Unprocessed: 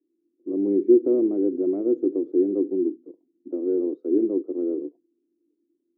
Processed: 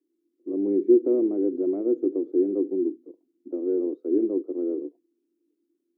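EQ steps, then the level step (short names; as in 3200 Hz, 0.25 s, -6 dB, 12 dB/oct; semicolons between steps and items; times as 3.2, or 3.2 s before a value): HPF 230 Hz 6 dB/oct; 0.0 dB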